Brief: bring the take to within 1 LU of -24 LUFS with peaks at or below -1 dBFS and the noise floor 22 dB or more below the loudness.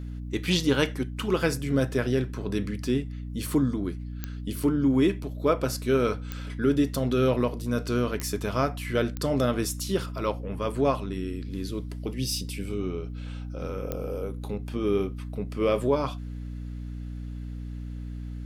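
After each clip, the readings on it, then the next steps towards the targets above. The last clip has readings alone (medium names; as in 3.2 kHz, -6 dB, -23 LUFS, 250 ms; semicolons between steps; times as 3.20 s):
clicks found 5; hum 60 Hz; highest harmonic 300 Hz; hum level -33 dBFS; loudness -28.5 LUFS; peak level -10.5 dBFS; loudness target -24.0 LUFS
-> de-click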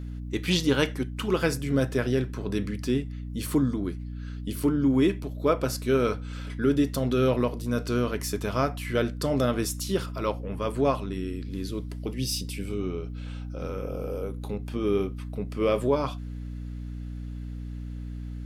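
clicks found 0; hum 60 Hz; highest harmonic 300 Hz; hum level -33 dBFS
-> hum notches 60/120/180/240/300 Hz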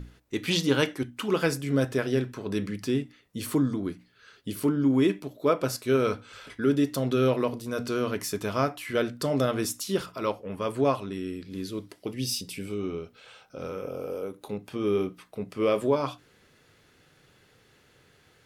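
hum not found; loudness -28.5 LUFS; peak level -10.5 dBFS; loudness target -24.0 LUFS
-> trim +4.5 dB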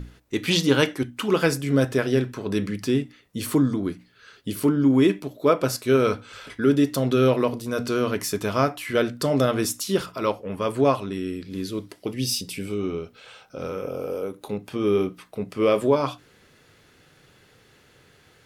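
loudness -24.0 LUFS; peak level -6.0 dBFS; noise floor -57 dBFS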